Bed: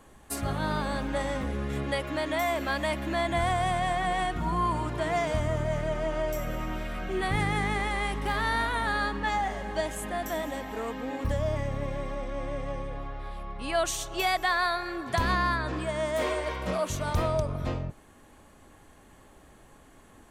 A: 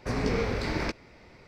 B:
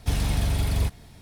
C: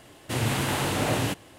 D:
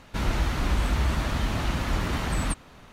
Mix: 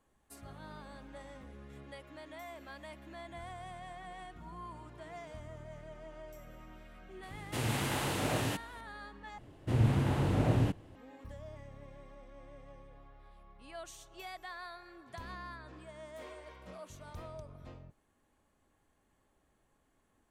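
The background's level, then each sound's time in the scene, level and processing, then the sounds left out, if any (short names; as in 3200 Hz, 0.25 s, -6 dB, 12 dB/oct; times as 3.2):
bed -19.5 dB
7.23 add C -7.5 dB
9.38 replace with C -9.5 dB + tilt -3.5 dB/oct
not used: A, B, D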